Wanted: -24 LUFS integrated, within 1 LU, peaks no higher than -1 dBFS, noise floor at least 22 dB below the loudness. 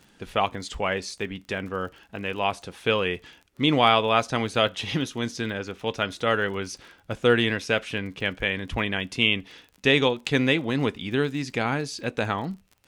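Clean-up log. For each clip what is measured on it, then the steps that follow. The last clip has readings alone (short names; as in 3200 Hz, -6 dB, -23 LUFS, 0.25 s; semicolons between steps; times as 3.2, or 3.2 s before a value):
ticks 34/s; loudness -25.5 LUFS; peak -4.5 dBFS; loudness target -24.0 LUFS
-> de-click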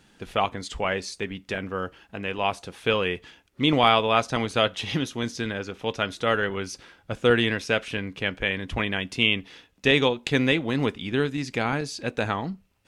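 ticks 0/s; loudness -25.5 LUFS; peak -4.5 dBFS; loudness target -24.0 LUFS
-> gain +1.5 dB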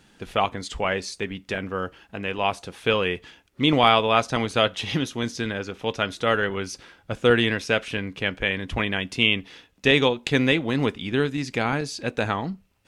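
loudness -24.0 LUFS; peak -3.0 dBFS; noise floor -60 dBFS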